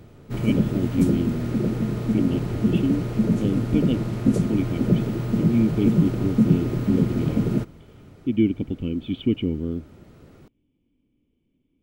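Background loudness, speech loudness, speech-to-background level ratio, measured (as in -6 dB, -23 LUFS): -23.5 LUFS, -26.5 LUFS, -3.0 dB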